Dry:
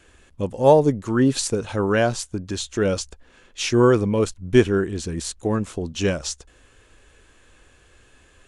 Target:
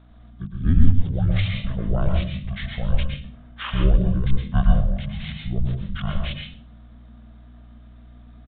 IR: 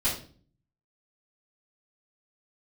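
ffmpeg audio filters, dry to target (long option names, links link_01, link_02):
-filter_complex "[0:a]asetrate=24750,aresample=44100,atempo=1.7818,afreqshift=-250,aeval=exprs='val(0)+0.00562*(sin(2*PI*60*n/s)+sin(2*PI*2*60*n/s)/2+sin(2*PI*3*60*n/s)/3+sin(2*PI*4*60*n/s)/4+sin(2*PI*5*60*n/s)/5)':channel_layout=same,asplit=2[link_01][link_02];[1:a]atrim=start_sample=2205,adelay=106[link_03];[link_02][link_03]afir=irnorm=-1:irlink=0,volume=-12dB[link_04];[link_01][link_04]amix=inputs=2:normalize=0,aresample=8000,aresample=44100,volume=-4.5dB"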